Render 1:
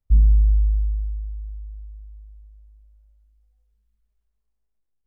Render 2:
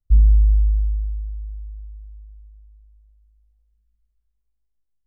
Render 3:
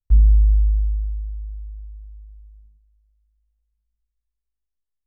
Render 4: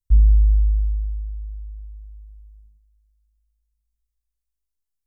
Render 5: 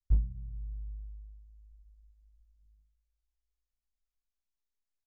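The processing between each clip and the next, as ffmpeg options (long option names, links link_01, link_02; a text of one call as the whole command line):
ffmpeg -i in.wav -af "lowshelf=frequency=180:gain=10,volume=-7.5dB" out.wav
ffmpeg -i in.wav -af "agate=range=-9dB:threshold=-47dB:ratio=16:detection=peak" out.wav
ffmpeg -i in.wav -af "bass=frequency=250:gain=6,treble=frequency=4000:gain=11,volume=-6.5dB" out.wav
ffmpeg -i in.wav -af "bandreject=frequency=52.08:width_type=h:width=4,bandreject=frequency=104.16:width_type=h:width=4,bandreject=frequency=156.24:width_type=h:width=4,bandreject=frequency=208.32:width_type=h:width=4,bandreject=frequency=260.4:width_type=h:width=4,bandreject=frequency=312.48:width_type=h:width=4,aresample=16000,aeval=exprs='clip(val(0),-1,0.178)':channel_layout=same,aresample=44100,volume=-6.5dB" out.wav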